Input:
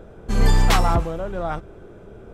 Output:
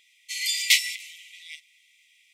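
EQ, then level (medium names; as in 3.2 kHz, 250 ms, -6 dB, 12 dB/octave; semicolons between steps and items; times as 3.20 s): brick-wall FIR high-pass 1.9 kHz; +7.0 dB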